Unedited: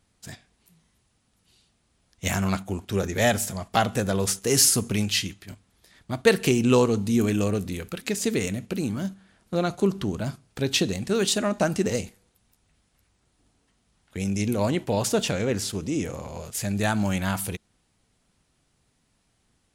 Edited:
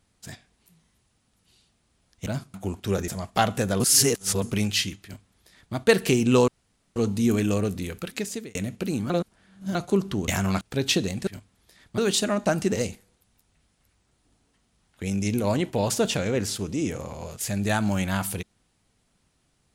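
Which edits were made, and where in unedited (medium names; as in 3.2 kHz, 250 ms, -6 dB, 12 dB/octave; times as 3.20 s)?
2.26–2.59 s: swap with 10.18–10.46 s
3.13–3.46 s: delete
4.18–4.80 s: reverse
5.42–6.13 s: copy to 11.12 s
6.86 s: insert room tone 0.48 s
7.99–8.45 s: fade out
9.00–9.65 s: reverse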